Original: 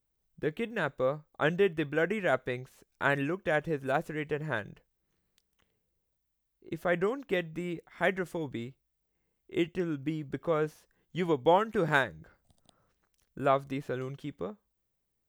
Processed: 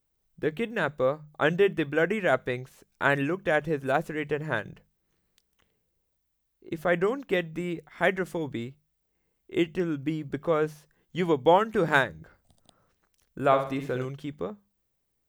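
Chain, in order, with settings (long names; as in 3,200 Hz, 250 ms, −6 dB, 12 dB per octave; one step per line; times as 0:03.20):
mains-hum notches 50/100/150/200 Hz
0:13.41–0:14.05: flutter between parallel walls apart 10.8 metres, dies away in 0.45 s
level +4 dB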